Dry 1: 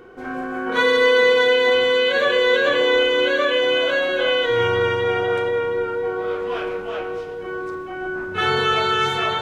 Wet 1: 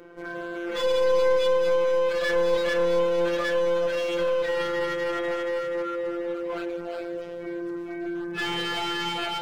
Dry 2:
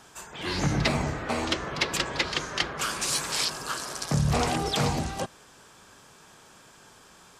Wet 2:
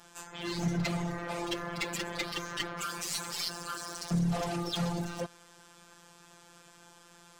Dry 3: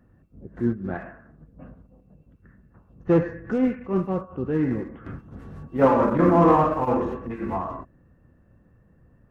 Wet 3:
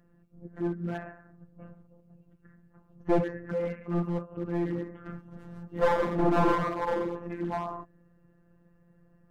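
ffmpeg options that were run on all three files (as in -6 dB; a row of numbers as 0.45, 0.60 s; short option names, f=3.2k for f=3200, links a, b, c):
-af "afftfilt=real='hypot(re,im)*cos(PI*b)':imag='0':win_size=1024:overlap=0.75,aeval=exprs='clip(val(0),-1,0.0562)':c=same"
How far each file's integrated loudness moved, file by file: -7.0, -6.5, -7.5 LU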